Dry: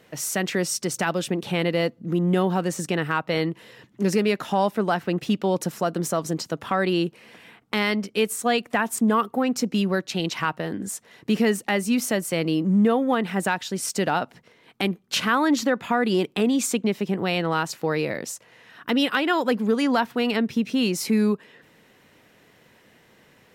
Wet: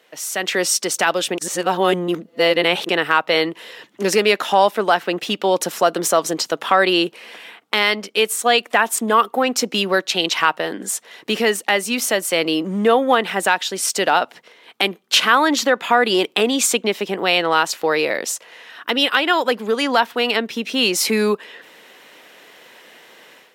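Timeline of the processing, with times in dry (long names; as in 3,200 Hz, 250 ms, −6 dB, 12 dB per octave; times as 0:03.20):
0:01.38–0:02.89: reverse
whole clip: high-pass filter 430 Hz 12 dB per octave; parametric band 3,300 Hz +4 dB 0.65 octaves; automatic gain control gain up to 11.5 dB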